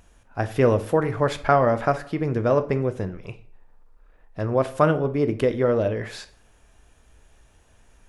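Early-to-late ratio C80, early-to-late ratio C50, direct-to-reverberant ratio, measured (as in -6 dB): 19.0 dB, 15.0 dB, 10.0 dB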